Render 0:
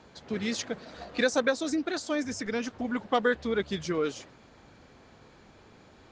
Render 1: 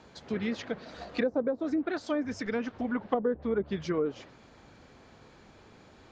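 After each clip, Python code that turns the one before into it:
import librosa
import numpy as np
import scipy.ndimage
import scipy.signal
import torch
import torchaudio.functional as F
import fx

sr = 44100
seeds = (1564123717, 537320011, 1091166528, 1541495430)

y = fx.env_lowpass_down(x, sr, base_hz=540.0, full_db=-22.5)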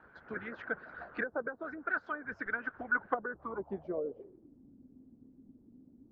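y = fx.hpss(x, sr, part='harmonic', gain_db=-13)
y = fx.filter_sweep_lowpass(y, sr, from_hz=1500.0, to_hz=260.0, start_s=3.26, end_s=4.58, q=7.6)
y = y * 10.0 ** (-5.0 / 20.0)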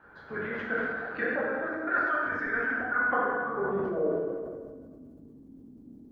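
y = fx.rev_plate(x, sr, seeds[0], rt60_s=1.8, hf_ratio=0.8, predelay_ms=0, drr_db=-6.5)
y = fx.sustainer(y, sr, db_per_s=28.0)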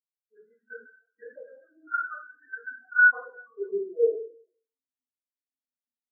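y = fx.spectral_expand(x, sr, expansion=4.0)
y = y * 10.0 ** (4.5 / 20.0)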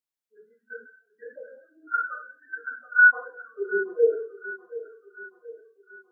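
y = fx.echo_feedback(x, sr, ms=728, feedback_pct=49, wet_db=-16)
y = y * 10.0 ** (2.5 / 20.0)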